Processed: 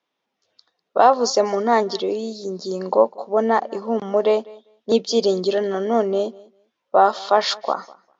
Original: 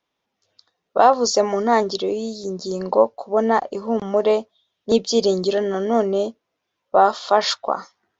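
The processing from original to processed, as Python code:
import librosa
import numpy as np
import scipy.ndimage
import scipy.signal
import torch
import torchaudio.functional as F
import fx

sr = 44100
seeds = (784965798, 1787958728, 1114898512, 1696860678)

y = fx.bandpass_edges(x, sr, low_hz=180.0, high_hz=6400.0)
y = fx.echo_feedback(y, sr, ms=199, feedback_pct=15, wet_db=-23.0)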